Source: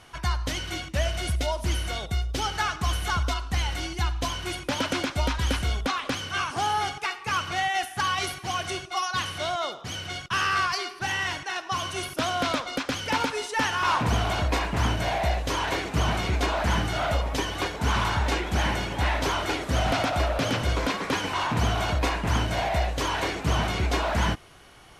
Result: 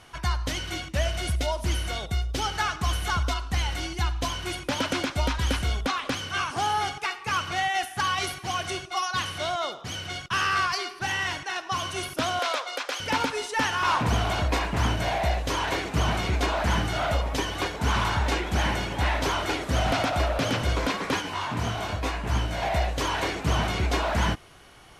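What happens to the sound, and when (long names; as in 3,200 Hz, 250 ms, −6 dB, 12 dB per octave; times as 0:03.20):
0:12.39–0:13.00: high-pass filter 450 Hz 24 dB per octave
0:21.20–0:22.61: micro pitch shift up and down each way 36 cents → 18 cents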